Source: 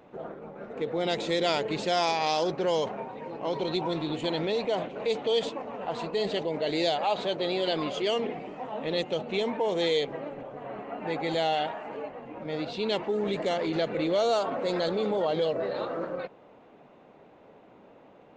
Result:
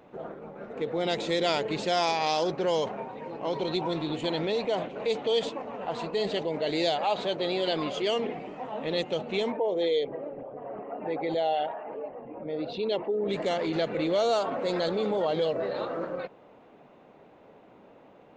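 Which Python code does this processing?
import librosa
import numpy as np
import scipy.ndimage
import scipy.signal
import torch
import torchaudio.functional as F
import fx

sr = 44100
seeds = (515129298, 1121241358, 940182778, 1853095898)

y = fx.envelope_sharpen(x, sr, power=1.5, at=(9.51, 13.29), fade=0.02)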